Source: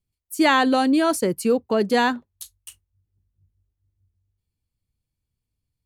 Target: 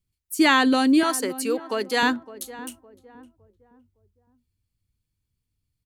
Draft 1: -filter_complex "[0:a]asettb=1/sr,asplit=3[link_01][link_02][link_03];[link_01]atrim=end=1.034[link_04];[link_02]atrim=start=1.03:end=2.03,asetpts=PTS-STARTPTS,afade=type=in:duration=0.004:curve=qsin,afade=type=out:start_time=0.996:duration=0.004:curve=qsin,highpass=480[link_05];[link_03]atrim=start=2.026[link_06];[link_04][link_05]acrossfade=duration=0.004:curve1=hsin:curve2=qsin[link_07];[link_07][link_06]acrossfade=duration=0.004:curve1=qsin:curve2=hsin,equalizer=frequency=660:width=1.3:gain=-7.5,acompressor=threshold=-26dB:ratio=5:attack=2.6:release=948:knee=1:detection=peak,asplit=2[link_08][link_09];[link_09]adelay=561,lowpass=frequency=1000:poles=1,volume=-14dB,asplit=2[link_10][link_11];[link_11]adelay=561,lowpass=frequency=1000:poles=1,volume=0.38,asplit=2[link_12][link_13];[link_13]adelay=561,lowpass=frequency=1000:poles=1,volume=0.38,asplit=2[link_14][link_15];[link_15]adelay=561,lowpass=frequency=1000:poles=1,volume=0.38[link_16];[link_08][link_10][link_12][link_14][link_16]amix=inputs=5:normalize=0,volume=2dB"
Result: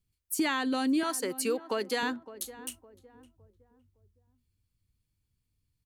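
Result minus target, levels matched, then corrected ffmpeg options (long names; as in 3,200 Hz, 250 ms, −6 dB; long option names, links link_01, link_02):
downward compressor: peak gain reduction +13 dB
-filter_complex "[0:a]asettb=1/sr,asplit=3[link_01][link_02][link_03];[link_01]atrim=end=1.034[link_04];[link_02]atrim=start=1.03:end=2.03,asetpts=PTS-STARTPTS,afade=type=in:duration=0.004:curve=qsin,afade=type=out:start_time=0.996:duration=0.004:curve=qsin,highpass=480[link_05];[link_03]atrim=start=2.026[link_06];[link_04][link_05]acrossfade=duration=0.004:curve1=hsin:curve2=qsin[link_07];[link_07][link_06]acrossfade=duration=0.004:curve1=qsin:curve2=hsin,equalizer=frequency=660:width=1.3:gain=-7.5,asplit=2[link_08][link_09];[link_09]adelay=561,lowpass=frequency=1000:poles=1,volume=-14dB,asplit=2[link_10][link_11];[link_11]adelay=561,lowpass=frequency=1000:poles=1,volume=0.38,asplit=2[link_12][link_13];[link_13]adelay=561,lowpass=frequency=1000:poles=1,volume=0.38,asplit=2[link_14][link_15];[link_15]adelay=561,lowpass=frequency=1000:poles=1,volume=0.38[link_16];[link_08][link_10][link_12][link_14][link_16]amix=inputs=5:normalize=0,volume=2dB"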